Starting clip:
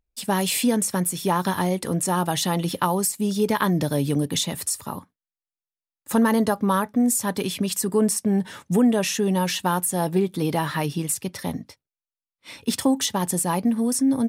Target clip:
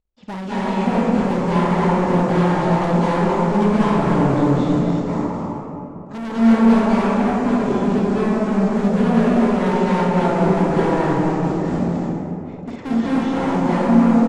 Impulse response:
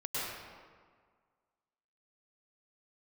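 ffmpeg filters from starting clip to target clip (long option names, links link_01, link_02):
-filter_complex "[0:a]lowpass=1100,aecho=1:1:52.48|265.3:0.501|0.501,aresample=16000,acrusher=bits=5:mode=log:mix=0:aa=0.000001,aresample=44100,volume=25.5dB,asoftclip=hard,volume=-25.5dB[link_01];[1:a]atrim=start_sample=2205,asetrate=22050,aresample=44100[link_02];[link_01][link_02]afir=irnorm=-1:irlink=0"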